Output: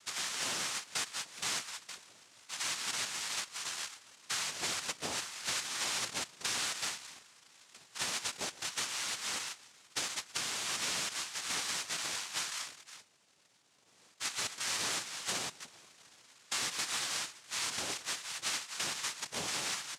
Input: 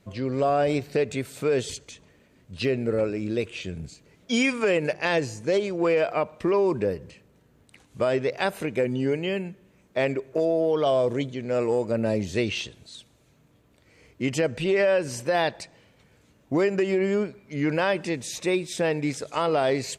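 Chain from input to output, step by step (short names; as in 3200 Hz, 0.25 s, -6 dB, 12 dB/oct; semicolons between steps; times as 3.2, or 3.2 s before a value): band inversion scrambler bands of 2000 Hz; 12.81–14.25 bell 2500 Hz -11 dB 1.8 oct; compressor 6:1, threshold -34 dBFS, peak gain reduction 14.5 dB; noise vocoder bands 2; gain -1 dB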